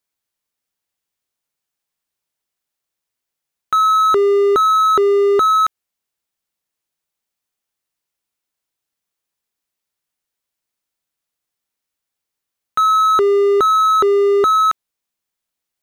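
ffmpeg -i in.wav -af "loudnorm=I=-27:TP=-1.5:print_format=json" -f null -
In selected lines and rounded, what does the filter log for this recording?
"input_i" : "-13.4",
"input_tp" : "-8.2",
"input_lra" : "7.9",
"input_thresh" : "-23.6",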